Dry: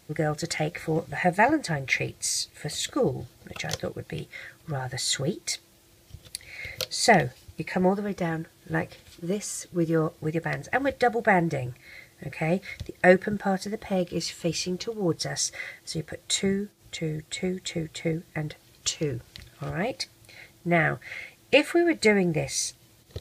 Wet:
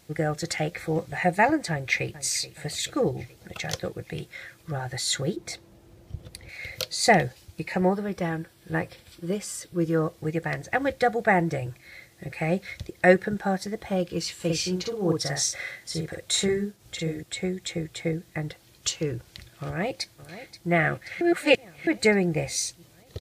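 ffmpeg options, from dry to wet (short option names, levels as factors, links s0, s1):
-filter_complex "[0:a]asplit=2[s0][s1];[s1]afade=t=in:st=1.71:d=0.01,afade=t=out:st=2.18:d=0.01,aecho=0:1:430|860|1290|1720|2150|2580:0.16788|0.100728|0.0604369|0.0362622|0.0217573|0.0130544[s2];[s0][s2]amix=inputs=2:normalize=0,asettb=1/sr,asplit=3[s3][s4][s5];[s3]atrim=end=5.364[s6];[s4]atrim=start=5.36:end=6.49,asetpts=PTS-STARTPTS,afade=t=in:d=0.004:c=qsin,afade=t=out:st=1.126:d=0.004:c=qsin,tiltshelf=f=1500:g=8.5[s7];[s5]atrim=start=6.486[s8];[s6][s7]acrossfade=d=0.004:c1=hsin:c2=qsin[s9];[s9][s8]acrossfade=d=0.004:c1=qsin:c2=hsin,asettb=1/sr,asplit=3[s10][s11][s12];[s10]atrim=end=7.794[s13];[s11]atrim=start=7.79:end=9.79,asetpts=PTS-STARTPTS,afade=t=in:d=0.004:c=qsin,afade=t=out:st=1.996:d=0.004:c=qsin,bandreject=f=6600:w=7.5[s14];[s12]atrim=start=9.786[s15];[s13][s14]acrossfade=d=0.004:c1=hsin:c2=qsin[s16];[s16][s15]acrossfade=d=0.004:c1=qsin:c2=hsin,asettb=1/sr,asplit=3[s17][s18][s19];[s17]atrim=end=14.354[s20];[s18]atrim=start=14.35:end=17.23,asetpts=PTS-STARTPTS,afade=t=in:d=0.004:c=qsin,afade=t=out:st=2.876:d=0.004:c=qsin,asplit=2[s21][s22];[s22]adelay=49,volume=0.708[s23];[s21][s23]amix=inputs=2:normalize=0,atrim=end_sample=127008[s24];[s19]atrim=start=17.226[s25];[s20][s24]acrossfade=d=0.004:c1=hsin:c2=qsin[s26];[s26][s25]acrossfade=d=0.004:c1=qsin:c2=hsin,asplit=2[s27][s28];[s28]afade=t=in:st=19.65:d=0.01,afade=t=out:st=20.7:d=0.01,aecho=0:1:530|1060|1590|2120|2650|3180|3710|4240|4770:0.188365|0.131855|0.0922988|0.0646092|0.0452264|0.0316585|0.0221609|0.0155127|0.0108589[s29];[s27][s29]amix=inputs=2:normalize=0,asplit=3[s30][s31][s32];[s30]atrim=end=21.212[s33];[s31]atrim=start=21.208:end=21.872,asetpts=PTS-STARTPTS,areverse[s34];[s32]atrim=start=21.868[s35];[s33][s34]acrossfade=d=0.004:c1=hsin:c2=hsin[s36];[s36][s35]acrossfade=d=0.004:c1=hsin:c2=hsin"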